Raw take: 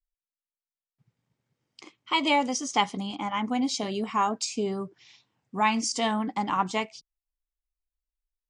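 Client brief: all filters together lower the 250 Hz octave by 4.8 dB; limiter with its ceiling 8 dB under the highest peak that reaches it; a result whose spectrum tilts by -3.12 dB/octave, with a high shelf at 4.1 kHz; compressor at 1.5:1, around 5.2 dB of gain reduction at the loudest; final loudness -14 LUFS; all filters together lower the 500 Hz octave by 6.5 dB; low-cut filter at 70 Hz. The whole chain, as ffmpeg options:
-af "highpass=70,equalizer=f=250:t=o:g=-4,equalizer=f=500:t=o:g=-7.5,highshelf=f=4100:g=-7,acompressor=threshold=0.0158:ratio=1.5,volume=13.3,alimiter=limit=0.75:level=0:latency=1"

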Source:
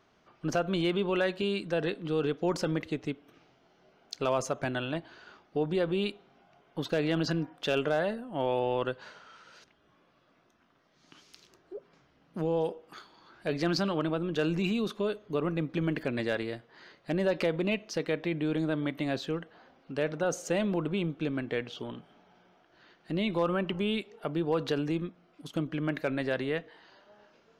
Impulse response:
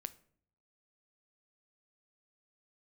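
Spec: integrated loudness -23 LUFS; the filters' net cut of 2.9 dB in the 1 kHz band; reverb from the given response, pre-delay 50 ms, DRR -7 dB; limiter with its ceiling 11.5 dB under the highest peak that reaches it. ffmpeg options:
-filter_complex "[0:a]equalizer=f=1000:t=o:g=-4,alimiter=level_in=1.78:limit=0.0631:level=0:latency=1,volume=0.562,asplit=2[s0][s1];[1:a]atrim=start_sample=2205,adelay=50[s2];[s1][s2]afir=irnorm=-1:irlink=0,volume=3.35[s3];[s0][s3]amix=inputs=2:normalize=0,volume=2.51"

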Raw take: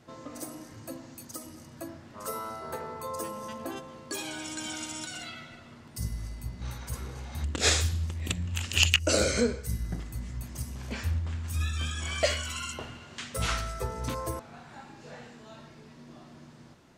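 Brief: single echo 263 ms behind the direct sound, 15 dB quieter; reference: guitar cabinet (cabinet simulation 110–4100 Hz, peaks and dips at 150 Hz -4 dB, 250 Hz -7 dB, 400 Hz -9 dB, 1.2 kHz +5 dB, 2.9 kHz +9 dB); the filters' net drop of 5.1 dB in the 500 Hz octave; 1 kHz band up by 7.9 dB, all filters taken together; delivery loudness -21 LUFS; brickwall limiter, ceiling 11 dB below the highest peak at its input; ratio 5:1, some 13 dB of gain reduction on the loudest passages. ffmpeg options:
-af "equalizer=f=500:t=o:g=-6.5,equalizer=f=1000:t=o:g=8.5,acompressor=threshold=0.0282:ratio=5,alimiter=level_in=1.41:limit=0.0631:level=0:latency=1,volume=0.708,highpass=110,equalizer=f=150:t=q:w=4:g=-4,equalizer=f=250:t=q:w=4:g=-7,equalizer=f=400:t=q:w=4:g=-9,equalizer=f=1200:t=q:w=4:g=5,equalizer=f=2900:t=q:w=4:g=9,lowpass=f=4100:w=0.5412,lowpass=f=4100:w=1.3066,aecho=1:1:263:0.178,volume=6.68"

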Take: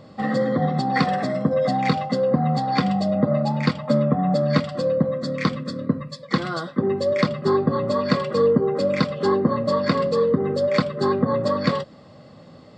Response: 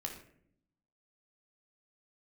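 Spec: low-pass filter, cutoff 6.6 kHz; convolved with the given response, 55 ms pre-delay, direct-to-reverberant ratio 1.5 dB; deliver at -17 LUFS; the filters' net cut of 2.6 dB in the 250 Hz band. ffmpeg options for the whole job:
-filter_complex "[0:a]lowpass=6600,equalizer=f=250:t=o:g=-3.5,asplit=2[s0][s1];[1:a]atrim=start_sample=2205,adelay=55[s2];[s1][s2]afir=irnorm=-1:irlink=0,volume=0.944[s3];[s0][s3]amix=inputs=2:normalize=0,volume=1.5"

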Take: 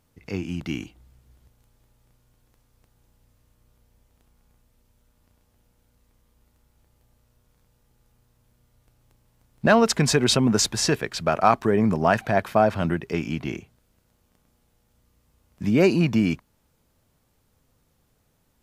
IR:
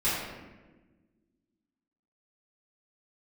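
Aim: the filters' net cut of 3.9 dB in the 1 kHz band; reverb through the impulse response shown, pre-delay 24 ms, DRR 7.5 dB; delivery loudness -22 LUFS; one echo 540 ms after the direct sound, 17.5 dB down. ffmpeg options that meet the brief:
-filter_complex "[0:a]equalizer=f=1000:t=o:g=-6,aecho=1:1:540:0.133,asplit=2[s0][s1];[1:a]atrim=start_sample=2205,adelay=24[s2];[s1][s2]afir=irnorm=-1:irlink=0,volume=0.112[s3];[s0][s3]amix=inputs=2:normalize=0,volume=1.06"

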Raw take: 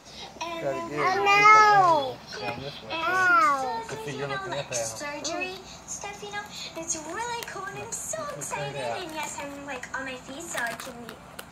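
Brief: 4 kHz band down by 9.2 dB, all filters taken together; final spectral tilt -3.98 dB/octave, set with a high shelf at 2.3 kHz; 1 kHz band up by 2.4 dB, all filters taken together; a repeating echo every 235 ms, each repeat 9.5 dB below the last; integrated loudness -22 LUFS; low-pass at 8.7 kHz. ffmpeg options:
-af "lowpass=8700,equalizer=f=1000:t=o:g=5,highshelf=f=2300:g=-5,equalizer=f=4000:t=o:g=-8,aecho=1:1:235|470|705|940:0.335|0.111|0.0365|0.012,volume=1.12"

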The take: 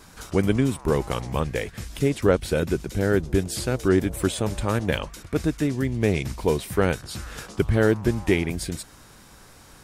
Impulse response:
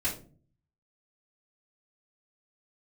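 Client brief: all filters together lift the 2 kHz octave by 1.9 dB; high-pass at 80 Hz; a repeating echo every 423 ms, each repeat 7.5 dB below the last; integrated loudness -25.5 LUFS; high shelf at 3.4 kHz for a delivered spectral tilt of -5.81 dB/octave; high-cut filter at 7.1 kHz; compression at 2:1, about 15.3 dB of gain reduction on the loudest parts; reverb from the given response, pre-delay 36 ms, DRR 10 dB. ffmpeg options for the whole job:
-filter_complex "[0:a]highpass=80,lowpass=7100,equalizer=f=2000:t=o:g=3.5,highshelf=f=3400:g=-3.5,acompressor=threshold=0.00631:ratio=2,aecho=1:1:423|846|1269|1692|2115:0.422|0.177|0.0744|0.0312|0.0131,asplit=2[s0][s1];[1:a]atrim=start_sample=2205,adelay=36[s2];[s1][s2]afir=irnorm=-1:irlink=0,volume=0.158[s3];[s0][s3]amix=inputs=2:normalize=0,volume=3.76"

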